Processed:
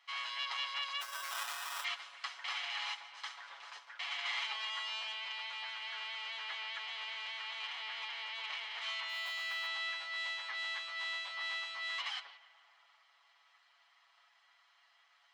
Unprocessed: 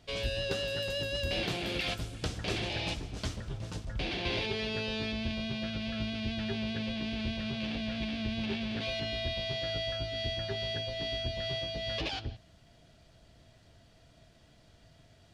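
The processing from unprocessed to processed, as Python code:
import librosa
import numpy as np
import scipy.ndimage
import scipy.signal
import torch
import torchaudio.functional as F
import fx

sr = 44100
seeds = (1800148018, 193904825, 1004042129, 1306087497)

p1 = fx.lower_of_two(x, sr, delay_ms=0.97)
p2 = fx.spacing_loss(p1, sr, db_at_10k=27)
p3 = fx.sample_hold(p2, sr, seeds[0], rate_hz=2200.0, jitter_pct=0, at=(1.0, 1.83), fade=0.02)
p4 = p3 + fx.echo_filtered(p3, sr, ms=146, feedback_pct=81, hz=3000.0, wet_db=-19, dry=0)
p5 = fx.mod_noise(p4, sr, seeds[1], snr_db=33, at=(9.08, 9.67))
p6 = scipy.signal.sosfilt(scipy.signal.butter(4, 1100.0, 'highpass', fs=sr, output='sos'), p5)
p7 = p6 + 0.83 * np.pad(p6, (int(7.1 * sr / 1000.0), 0))[:len(p6)]
p8 = fx.env_flatten(p7, sr, amount_pct=50, at=(3.37, 3.79))
y = F.gain(torch.from_numpy(p8), 5.0).numpy()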